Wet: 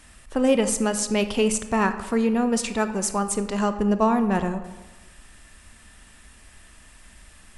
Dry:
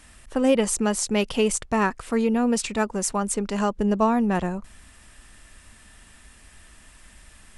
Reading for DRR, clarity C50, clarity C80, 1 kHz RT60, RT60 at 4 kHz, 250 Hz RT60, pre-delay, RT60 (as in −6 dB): 9.5 dB, 11.0 dB, 12.5 dB, 1.3 s, 0.75 s, 1.2 s, 22 ms, 1.3 s